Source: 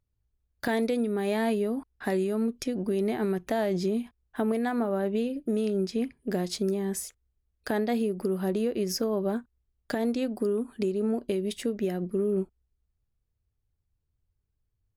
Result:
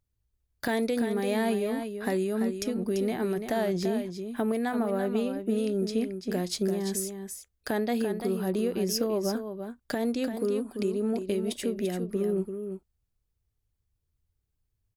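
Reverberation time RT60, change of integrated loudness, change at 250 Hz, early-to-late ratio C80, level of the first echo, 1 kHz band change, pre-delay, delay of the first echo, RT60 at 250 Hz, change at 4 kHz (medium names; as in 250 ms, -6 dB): no reverb, -0.5 dB, -0.5 dB, no reverb, -8.0 dB, 0.0 dB, no reverb, 340 ms, no reverb, +2.0 dB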